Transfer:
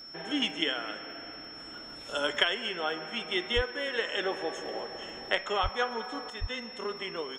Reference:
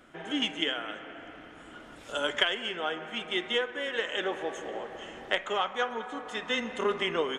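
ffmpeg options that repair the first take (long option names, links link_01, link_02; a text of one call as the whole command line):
ffmpeg -i in.wav -filter_complex "[0:a]adeclick=threshold=4,bandreject=frequency=5400:width=30,asplit=3[link_01][link_02][link_03];[link_01]afade=type=out:start_time=3.55:duration=0.02[link_04];[link_02]highpass=frequency=140:width=0.5412,highpass=frequency=140:width=1.3066,afade=type=in:start_time=3.55:duration=0.02,afade=type=out:start_time=3.67:duration=0.02[link_05];[link_03]afade=type=in:start_time=3.67:duration=0.02[link_06];[link_04][link_05][link_06]amix=inputs=3:normalize=0,asplit=3[link_07][link_08][link_09];[link_07]afade=type=out:start_time=5.62:duration=0.02[link_10];[link_08]highpass=frequency=140:width=0.5412,highpass=frequency=140:width=1.3066,afade=type=in:start_time=5.62:duration=0.02,afade=type=out:start_time=5.74:duration=0.02[link_11];[link_09]afade=type=in:start_time=5.74:duration=0.02[link_12];[link_10][link_11][link_12]amix=inputs=3:normalize=0,asplit=3[link_13][link_14][link_15];[link_13]afade=type=out:start_time=6.4:duration=0.02[link_16];[link_14]highpass=frequency=140:width=0.5412,highpass=frequency=140:width=1.3066,afade=type=in:start_time=6.4:duration=0.02,afade=type=out:start_time=6.52:duration=0.02[link_17];[link_15]afade=type=in:start_time=6.52:duration=0.02[link_18];[link_16][link_17][link_18]amix=inputs=3:normalize=0,asetnsamples=nb_out_samples=441:pad=0,asendcmd='6.3 volume volume 7.5dB',volume=0dB" out.wav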